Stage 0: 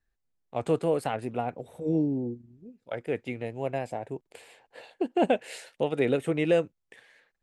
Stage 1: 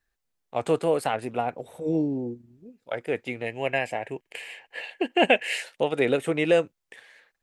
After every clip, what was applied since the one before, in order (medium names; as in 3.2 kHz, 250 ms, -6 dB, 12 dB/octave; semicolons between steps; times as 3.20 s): time-frequency box 3.46–5.62 s, 1.6–3.2 kHz +10 dB; bass shelf 380 Hz -8.5 dB; trim +6 dB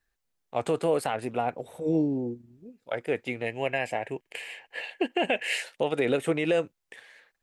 peak limiter -15.5 dBFS, peak gain reduction 9 dB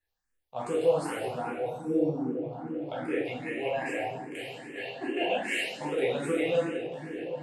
delay with an opening low-pass 373 ms, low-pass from 200 Hz, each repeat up 1 oct, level -6 dB; reverberation RT60 1.1 s, pre-delay 5 ms, DRR -6.5 dB; barber-pole phaser +2.5 Hz; trim -7 dB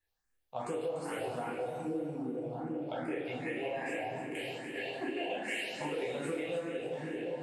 compression 5:1, threshold -34 dBFS, peak gain reduction 14.5 dB; on a send: two-band feedback delay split 1.6 kHz, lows 168 ms, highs 292 ms, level -10.5 dB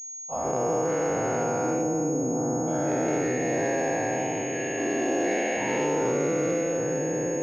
every event in the spectrogram widened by 480 ms; distance through air 490 m; class-D stage that switches slowly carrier 6.6 kHz; trim +5 dB